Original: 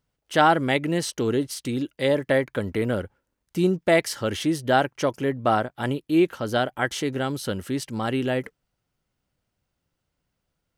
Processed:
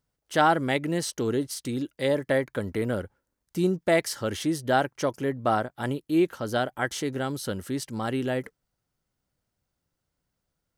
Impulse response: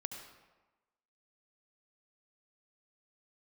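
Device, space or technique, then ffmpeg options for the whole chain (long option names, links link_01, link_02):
exciter from parts: -filter_complex "[0:a]asplit=2[link_01][link_02];[link_02]highpass=frequency=2500:width=0.5412,highpass=frequency=2500:width=1.3066,asoftclip=type=tanh:threshold=-26dB,volume=-7dB[link_03];[link_01][link_03]amix=inputs=2:normalize=0,volume=-3dB"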